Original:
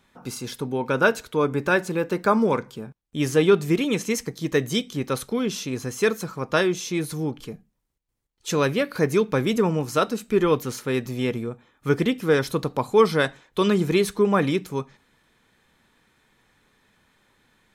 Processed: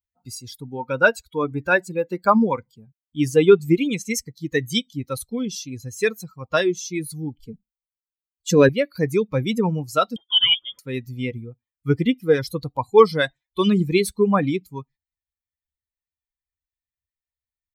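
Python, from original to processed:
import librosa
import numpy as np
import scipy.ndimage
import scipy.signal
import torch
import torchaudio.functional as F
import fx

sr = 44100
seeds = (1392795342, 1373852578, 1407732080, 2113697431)

y = fx.bin_expand(x, sr, power=2.0)
y = fx.small_body(y, sr, hz=(240.0, 400.0, 1600.0), ring_ms=35, db=16, at=(7.46, 8.69))
y = fx.freq_invert(y, sr, carrier_hz=3400, at=(10.16, 10.79))
y = y * 10.0 ** (6.5 / 20.0)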